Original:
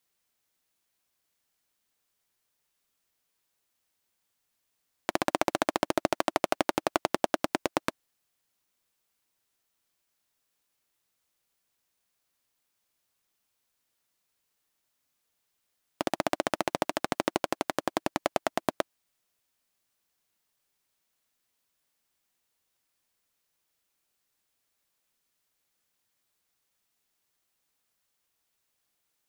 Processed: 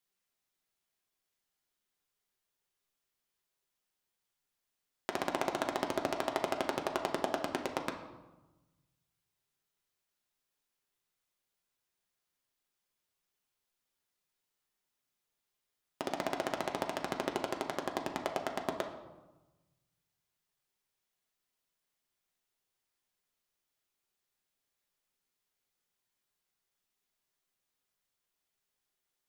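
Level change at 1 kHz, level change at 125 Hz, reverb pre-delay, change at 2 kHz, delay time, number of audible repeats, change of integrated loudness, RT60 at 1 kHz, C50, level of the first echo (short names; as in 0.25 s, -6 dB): -6.0 dB, -5.0 dB, 5 ms, -6.0 dB, none, none, -6.0 dB, 1.1 s, 8.5 dB, none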